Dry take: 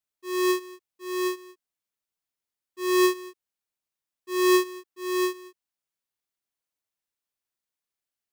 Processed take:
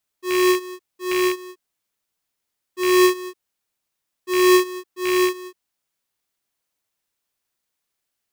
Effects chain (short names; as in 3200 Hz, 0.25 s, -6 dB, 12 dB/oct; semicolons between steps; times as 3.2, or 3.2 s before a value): rattling part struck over -42 dBFS, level -23 dBFS; in parallel at +1 dB: compressor, threshold -31 dBFS, peak gain reduction 12 dB; on the sum: gain +3 dB